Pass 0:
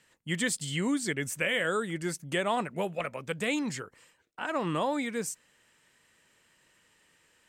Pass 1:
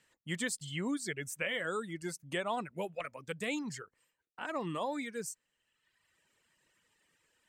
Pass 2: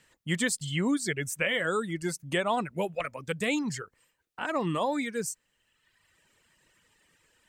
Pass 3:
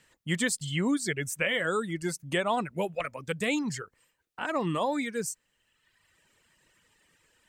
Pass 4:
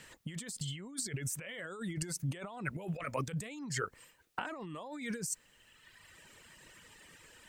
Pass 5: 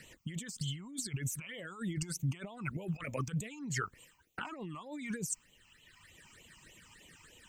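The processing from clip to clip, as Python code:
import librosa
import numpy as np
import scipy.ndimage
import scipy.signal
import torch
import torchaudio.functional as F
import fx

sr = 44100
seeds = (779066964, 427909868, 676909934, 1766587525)

y1 = fx.dereverb_blind(x, sr, rt60_s=1.2)
y1 = y1 * 10.0 ** (-5.5 / 20.0)
y2 = fx.low_shelf(y1, sr, hz=98.0, db=8.0)
y2 = y2 * 10.0 ** (7.0 / 20.0)
y3 = y2
y4 = fx.over_compress(y3, sr, threshold_db=-41.0, ratio=-1.0)
y5 = fx.phaser_stages(y4, sr, stages=8, low_hz=480.0, high_hz=1600.0, hz=3.3, feedback_pct=15)
y5 = y5 * 10.0 ** (2.0 / 20.0)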